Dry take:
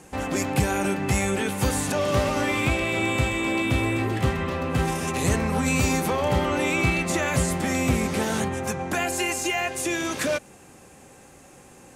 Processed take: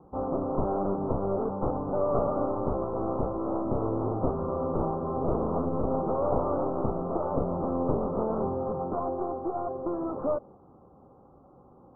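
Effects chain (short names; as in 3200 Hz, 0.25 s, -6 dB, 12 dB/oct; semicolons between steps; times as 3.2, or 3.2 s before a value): one-sided fold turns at -25.5 dBFS; steep low-pass 1300 Hz 96 dB/oct; dynamic EQ 500 Hz, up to +7 dB, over -42 dBFS, Q 1; gain -4.5 dB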